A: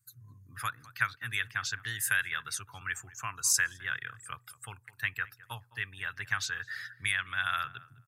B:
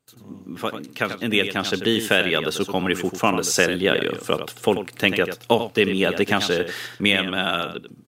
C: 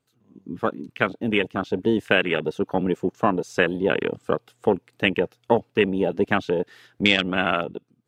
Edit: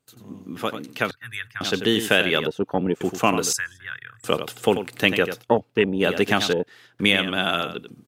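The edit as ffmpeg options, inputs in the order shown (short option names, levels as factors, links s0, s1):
-filter_complex "[0:a]asplit=2[s0][s1];[2:a]asplit=3[s2][s3][s4];[1:a]asplit=6[s5][s6][s7][s8][s9][s10];[s5]atrim=end=1.112[s11];[s0]atrim=start=1.108:end=1.612[s12];[s6]atrim=start=1.608:end=2.472[s13];[s2]atrim=start=2.468:end=3.012[s14];[s7]atrim=start=3.008:end=3.532[s15];[s1]atrim=start=3.528:end=4.242[s16];[s8]atrim=start=4.238:end=5.45[s17];[s3]atrim=start=5.39:end=6.05[s18];[s9]atrim=start=5.99:end=6.532[s19];[s4]atrim=start=6.528:end=6.992[s20];[s10]atrim=start=6.988[s21];[s11][s12]acrossfade=d=0.004:c1=hsin:c2=hsin[s22];[s22][s13]acrossfade=d=0.004:c1=hsin:c2=hsin[s23];[s23][s14]acrossfade=d=0.004:c1=hsin:c2=hsin[s24];[s24][s15]acrossfade=d=0.004:c1=hsin:c2=hsin[s25];[s25][s16]acrossfade=d=0.004:c1=hsin:c2=hsin[s26];[s26][s17]acrossfade=d=0.004:c1=hsin:c2=hsin[s27];[s27][s18]acrossfade=d=0.06:c1=tri:c2=tri[s28];[s28][s19]acrossfade=d=0.06:c1=tri:c2=tri[s29];[s29][s20]acrossfade=d=0.004:c1=hsin:c2=hsin[s30];[s30][s21]acrossfade=d=0.004:c1=hsin:c2=hsin"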